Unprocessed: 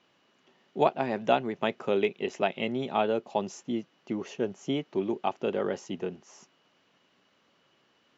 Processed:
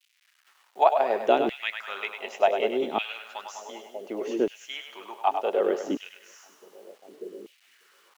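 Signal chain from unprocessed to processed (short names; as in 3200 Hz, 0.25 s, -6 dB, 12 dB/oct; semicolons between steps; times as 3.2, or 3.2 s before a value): split-band echo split 520 Hz, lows 0.593 s, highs 0.1 s, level -7 dB; bit-crush 10-bit; LFO high-pass saw down 0.67 Hz 280–2800 Hz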